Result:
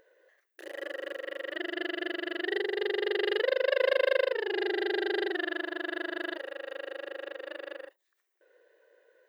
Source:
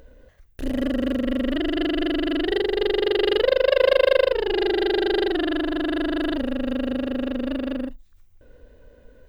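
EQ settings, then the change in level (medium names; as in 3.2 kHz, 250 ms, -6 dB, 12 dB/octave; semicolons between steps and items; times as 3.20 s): brick-wall FIR high-pass 320 Hz; peaking EQ 1.8 kHz +10.5 dB 0.35 oct; -9.0 dB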